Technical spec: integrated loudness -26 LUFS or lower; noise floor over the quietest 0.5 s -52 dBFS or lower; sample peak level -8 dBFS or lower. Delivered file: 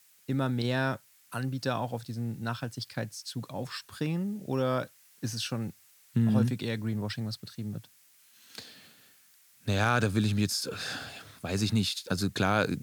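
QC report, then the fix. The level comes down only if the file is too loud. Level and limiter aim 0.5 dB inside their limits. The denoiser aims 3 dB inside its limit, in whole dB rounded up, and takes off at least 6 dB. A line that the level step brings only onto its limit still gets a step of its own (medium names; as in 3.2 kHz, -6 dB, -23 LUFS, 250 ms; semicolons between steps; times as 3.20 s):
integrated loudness -31.5 LUFS: pass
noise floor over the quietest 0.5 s -61 dBFS: pass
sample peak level -11.0 dBFS: pass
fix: none needed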